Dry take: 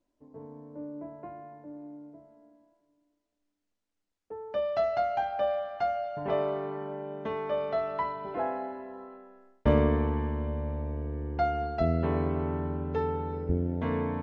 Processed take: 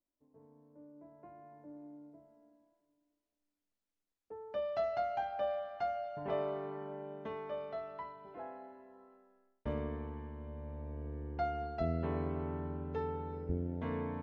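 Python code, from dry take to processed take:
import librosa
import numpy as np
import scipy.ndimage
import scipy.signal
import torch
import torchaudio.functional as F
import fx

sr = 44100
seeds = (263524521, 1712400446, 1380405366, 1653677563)

y = fx.gain(x, sr, db=fx.line((0.95, -16.0), (1.63, -7.0), (7.05, -7.0), (8.18, -15.0), (10.35, -15.0), (11.08, -8.0)))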